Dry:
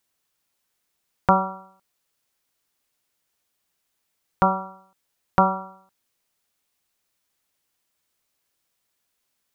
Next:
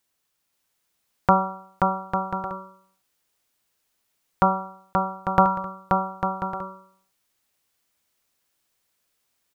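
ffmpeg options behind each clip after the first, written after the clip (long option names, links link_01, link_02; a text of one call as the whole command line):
ffmpeg -i in.wav -af "aecho=1:1:530|848|1039|1153|1222:0.631|0.398|0.251|0.158|0.1" out.wav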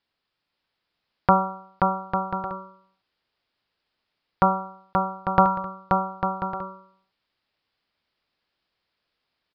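ffmpeg -i in.wav -af "aresample=11025,aresample=44100" out.wav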